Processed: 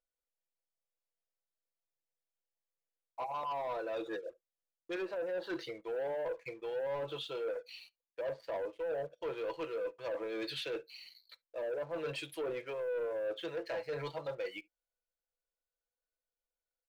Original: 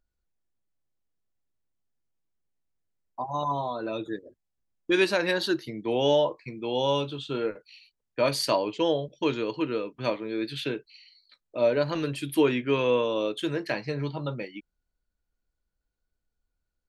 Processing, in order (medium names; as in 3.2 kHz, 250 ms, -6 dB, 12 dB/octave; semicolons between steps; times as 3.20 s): resonant low shelf 350 Hz -12.5 dB, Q 3; low-pass that closes with the level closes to 770 Hz, closed at -18 dBFS; comb 6 ms, depth 55%; reverse; compression 6:1, threshold -32 dBFS, peak gain reduction 19 dB; reverse; waveshaping leveller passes 2; on a send: reverberation, pre-delay 13 ms, DRR 22.5 dB; on the sum: trim -8 dB